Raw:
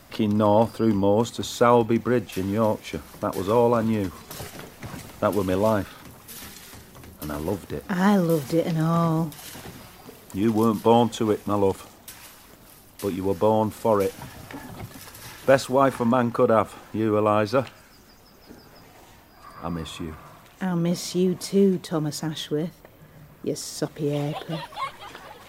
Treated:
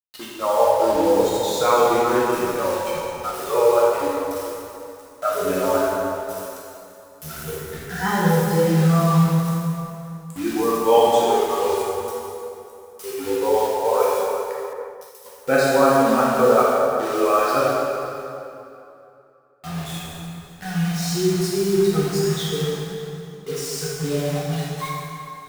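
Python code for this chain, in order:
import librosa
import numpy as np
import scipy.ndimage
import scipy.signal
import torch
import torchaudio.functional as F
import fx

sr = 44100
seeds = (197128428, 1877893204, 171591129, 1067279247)

y = fx.noise_reduce_blind(x, sr, reduce_db=26)
y = fx.hum_notches(y, sr, base_hz=60, count=10)
y = fx.quant_dither(y, sr, seeds[0], bits=6, dither='none')
y = y + 10.0 ** (-21.5 / 20.0) * np.pad(y, (int(591 * sr / 1000.0), 0))[:len(y)]
y = fx.rev_plate(y, sr, seeds[1], rt60_s=2.8, hf_ratio=0.7, predelay_ms=0, drr_db=-7.0)
y = fx.band_widen(y, sr, depth_pct=100, at=(14.73, 15.26))
y = F.gain(torch.from_numpy(y), -2.0).numpy()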